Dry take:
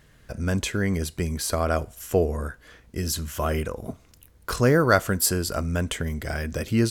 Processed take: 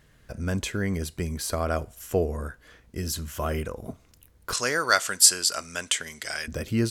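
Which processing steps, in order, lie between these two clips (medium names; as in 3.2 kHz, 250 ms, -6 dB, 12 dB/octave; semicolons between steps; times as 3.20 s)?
4.53–6.48 s: frequency weighting ITU-R 468; trim -3 dB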